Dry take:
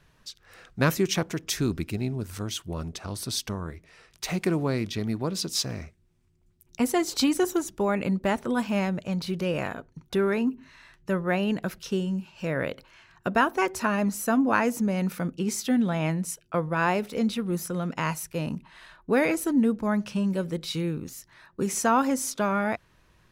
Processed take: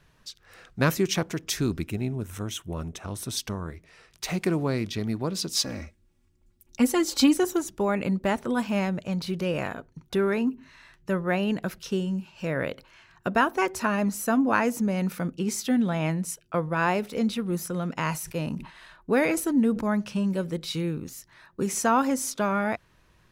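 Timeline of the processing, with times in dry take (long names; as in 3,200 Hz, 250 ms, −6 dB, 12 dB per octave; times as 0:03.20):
0:01.86–0:03.37: parametric band 4,600 Hz −14.5 dB 0.25 octaves
0:05.56–0:07.36: comb filter 3.6 ms
0:18.09–0:19.88: level that may fall only so fast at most 120 dB per second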